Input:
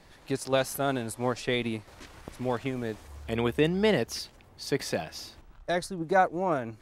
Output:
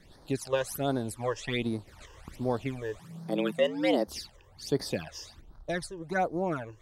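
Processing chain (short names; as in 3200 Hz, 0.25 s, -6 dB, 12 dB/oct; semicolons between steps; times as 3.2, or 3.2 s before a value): phaser stages 12, 1.3 Hz, lowest notch 220–2700 Hz; 2.99–4.08 frequency shift +94 Hz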